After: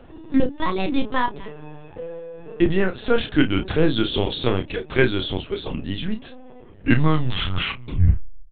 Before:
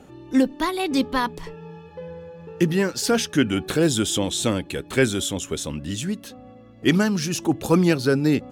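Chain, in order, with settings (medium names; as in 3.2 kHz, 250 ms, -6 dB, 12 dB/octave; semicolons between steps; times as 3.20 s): tape stop on the ending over 1.93 s; LPC vocoder at 8 kHz pitch kept; doubling 32 ms -8.5 dB; trim +1.5 dB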